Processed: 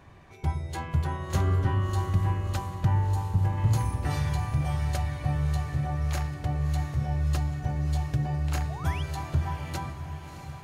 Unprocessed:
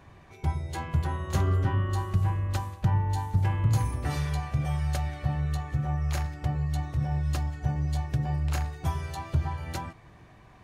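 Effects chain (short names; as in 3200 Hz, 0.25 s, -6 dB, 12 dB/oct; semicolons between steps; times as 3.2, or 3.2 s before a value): 3.07–3.58 bell 2700 Hz -10 dB 2.2 oct; 8.69–9.03 painted sound rise 600–3500 Hz -42 dBFS; diffused feedback echo 0.656 s, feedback 58%, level -9.5 dB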